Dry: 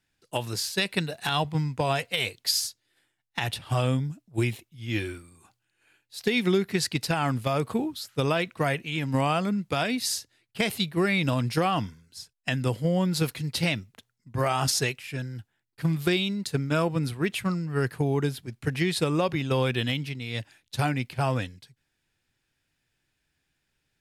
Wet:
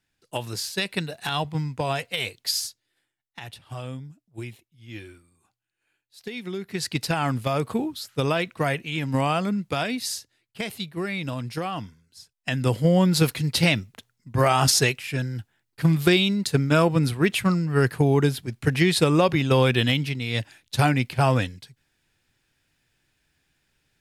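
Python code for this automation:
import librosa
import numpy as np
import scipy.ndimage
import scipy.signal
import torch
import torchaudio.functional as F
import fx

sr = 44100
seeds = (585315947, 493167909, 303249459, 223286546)

y = fx.gain(x, sr, db=fx.line((2.65, -0.5), (3.39, -10.0), (6.51, -10.0), (6.96, 1.5), (9.63, 1.5), (10.68, -5.0), (12.19, -5.0), (12.78, 6.0)))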